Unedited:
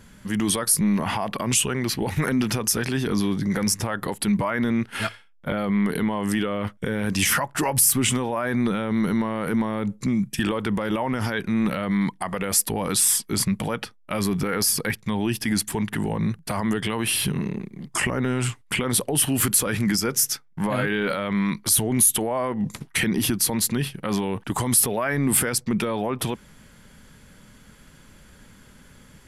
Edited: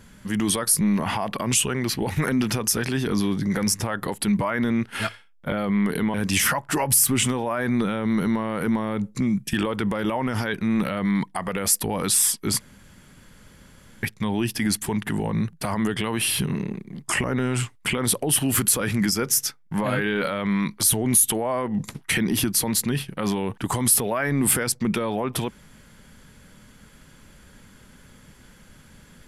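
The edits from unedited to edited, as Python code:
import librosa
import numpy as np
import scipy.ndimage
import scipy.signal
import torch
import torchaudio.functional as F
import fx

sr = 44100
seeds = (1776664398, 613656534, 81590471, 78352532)

y = fx.edit(x, sr, fx.cut(start_s=6.14, length_s=0.86),
    fx.room_tone_fill(start_s=13.46, length_s=1.43), tone=tone)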